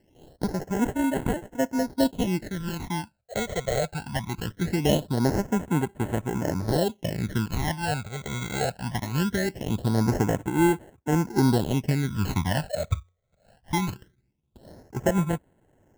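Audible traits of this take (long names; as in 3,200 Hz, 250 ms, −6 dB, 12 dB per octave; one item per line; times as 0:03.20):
aliases and images of a low sample rate 1,200 Hz, jitter 0%
phaser sweep stages 12, 0.21 Hz, lowest notch 280–5,000 Hz
amplitude modulation by smooth noise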